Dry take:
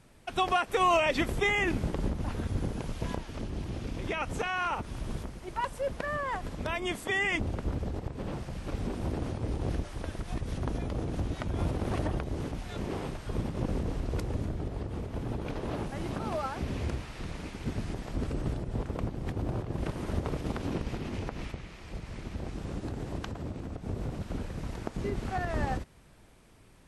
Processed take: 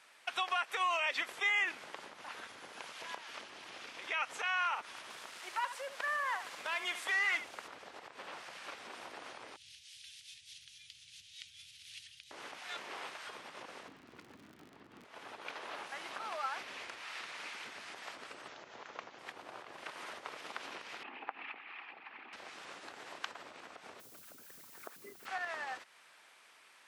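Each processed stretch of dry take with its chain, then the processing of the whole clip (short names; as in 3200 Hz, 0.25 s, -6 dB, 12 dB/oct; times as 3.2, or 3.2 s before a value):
5.1–7.68 delta modulation 64 kbps, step -44 dBFS + echo 73 ms -12 dB
9.56–12.31 inverse Chebyshev band-stop 390–890 Hz, stop band 80 dB + bell 600 Hz +9.5 dB 1.8 oct
13.87–15.04 LPF 2800 Hz 6 dB/oct + resonant low shelf 370 Hz +12.5 dB, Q 1.5 + crackle 56/s -36 dBFS
18.48–19.19 careless resampling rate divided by 3×, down none, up filtered + Doppler distortion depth 0.18 ms
21.03–22.33 formant sharpening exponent 1.5 + speaker cabinet 260–3700 Hz, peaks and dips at 270 Hz +9 dB, 560 Hz -5 dB, 810 Hz +10 dB, 1200 Hz +5 dB, 1700 Hz +4 dB, 2600 Hz +7 dB
23.99–25.25 formant sharpening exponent 2 + band shelf 2900 Hz +8.5 dB 2.9 oct + added noise violet -51 dBFS
whole clip: high shelf 6300 Hz -11.5 dB; compressor 2.5:1, threshold -36 dBFS; HPF 1300 Hz 12 dB/oct; gain +7.5 dB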